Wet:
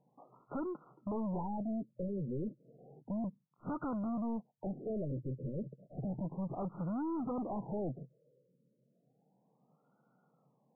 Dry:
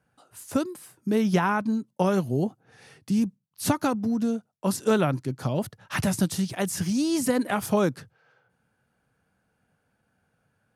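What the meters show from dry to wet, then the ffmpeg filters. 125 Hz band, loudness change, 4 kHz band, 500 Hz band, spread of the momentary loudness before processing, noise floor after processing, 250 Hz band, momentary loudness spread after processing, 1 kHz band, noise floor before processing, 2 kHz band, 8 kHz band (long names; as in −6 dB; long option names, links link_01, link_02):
−11.5 dB, −13.5 dB, below −40 dB, −14.0 dB, 8 LU, −76 dBFS, −12.5 dB, 8 LU, −14.0 dB, −74 dBFS, −28.5 dB, below −40 dB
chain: -af "afftfilt=real='re*between(b*sr/4096,120,6100)':imag='im*between(b*sr/4096,120,6100)':win_size=4096:overlap=0.75,aeval=exprs='(tanh(63.1*val(0)+0.1)-tanh(0.1))/63.1':channel_layout=same,afftfilt=real='re*lt(b*sr/1024,580*pow(1500/580,0.5+0.5*sin(2*PI*0.32*pts/sr)))':imag='im*lt(b*sr/1024,580*pow(1500/580,0.5+0.5*sin(2*PI*0.32*pts/sr)))':win_size=1024:overlap=0.75,volume=1dB"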